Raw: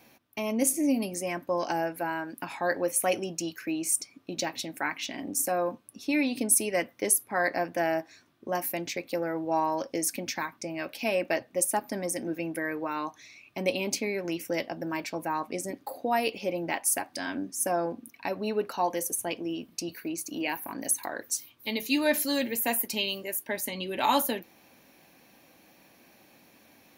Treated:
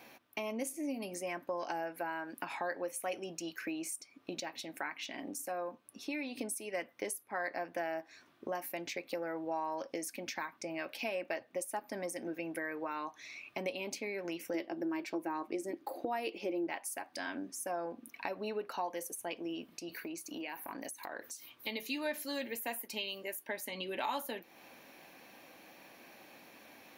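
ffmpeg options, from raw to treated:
-filter_complex "[0:a]asettb=1/sr,asplit=3[a][b][c];[a]atrim=end=14.544[d];[b]atrim=start=14.54:end=16.67,asetpts=PTS-STARTPTS,afade=t=in:d=0.004:c=qsin,afade=t=out:st=2.126:d=0.004:c=qsin,equalizer=f=340:t=o:w=0.34:g=14.5[e];[c]atrim=start=16.666[f];[d][e]acrossfade=d=0.004:c1=hsin:c2=qsin[g];[g][f]acrossfade=d=0.004:c1=qsin:c2=hsin,asettb=1/sr,asplit=3[h][i][j];[h]atrim=end=19.664[k];[i]atrim=start=19.66:end=21.53,asetpts=PTS-STARTPTS,afade=t=in:d=0.004:c=qsin,afade=t=out:st=1.866:d=0.004:c=qsin,acompressor=threshold=-40dB:ratio=3:attack=3.2:release=140:knee=1:detection=peak[l];[j]atrim=start=21.526[m];[k][l]acrossfade=d=0.004:c1=hsin:c2=qsin[n];[n][m]acrossfade=d=0.004:c1=qsin:c2=hsin,asplit=3[o][p][q];[o]atrim=end=4.402[r];[p]atrim=start=4.398:end=6.392,asetpts=PTS-STARTPTS,volume=-4dB[s];[q]atrim=start=6.388[t];[r][s]acrossfade=d=0.004:c1=hsin:c2=hsin[u];[u][t]acrossfade=d=0.004:c1=hsin:c2=hsin,lowshelf=f=230:g=-10,acompressor=threshold=-43dB:ratio=3,bass=f=250:g=-2,treble=f=4k:g=-6,volume=4.5dB"

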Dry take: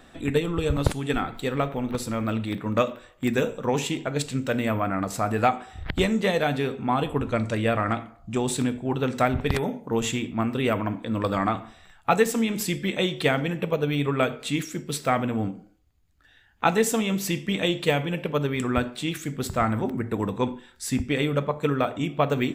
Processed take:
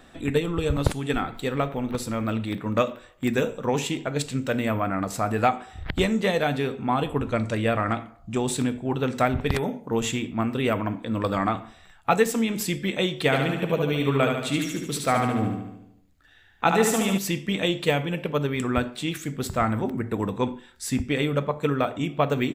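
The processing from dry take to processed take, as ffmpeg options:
-filter_complex "[0:a]asplit=3[a][b][c];[a]afade=t=out:st=13.31:d=0.02[d];[b]aecho=1:1:73|146|219|292|365|438|511|584:0.596|0.34|0.194|0.11|0.0629|0.0358|0.0204|0.0116,afade=t=in:st=13.31:d=0.02,afade=t=out:st=17.17:d=0.02[e];[c]afade=t=in:st=17.17:d=0.02[f];[d][e][f]amix=inputs=3:normalize=0"

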